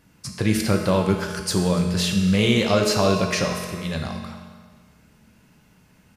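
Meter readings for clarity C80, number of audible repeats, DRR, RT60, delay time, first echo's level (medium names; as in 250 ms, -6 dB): 6.0 dB, 1, 2.0 dB, 1.5 s, 287 ms, -19.5 dB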